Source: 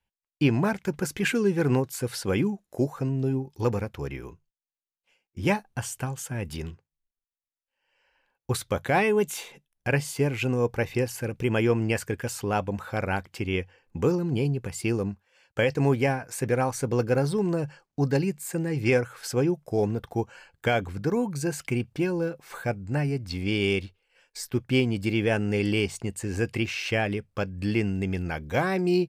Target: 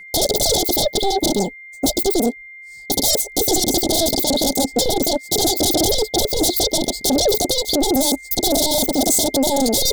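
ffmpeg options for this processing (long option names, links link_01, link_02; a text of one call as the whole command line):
ffmpeg -i in.wav -af "equalizer=frequency=1900:width_type=o:width=0.77:gain=-3.5,aeval=exprs='0.282*sin(PI/2*8.91*val(0)/0.282)':channel_layout=same,asetrate=129213,aresample=44100,asuperstop=centerf=1700:order=20:qfactor=0.67,aeval=exprs='val(0)+0.0158*sin(2*PI*2100*n/s)':channel_layout=same,asoftclip=type=tanh:threshold=-5.5dB" out.wav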